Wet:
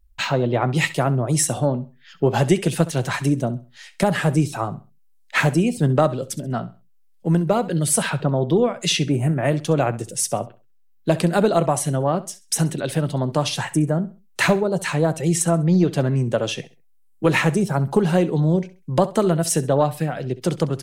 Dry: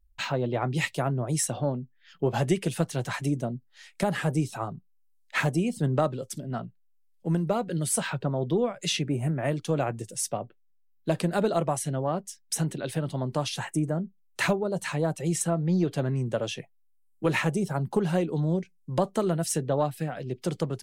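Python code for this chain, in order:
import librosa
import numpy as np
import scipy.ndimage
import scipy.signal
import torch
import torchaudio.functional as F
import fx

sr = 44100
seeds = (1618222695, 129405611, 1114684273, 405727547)

y = fx.echo_feedback(x, sr, ms=66, feedback_pct=28, wet_db=-17)
y = F.gain(torch.from_numpy(y), 7.5).numpy()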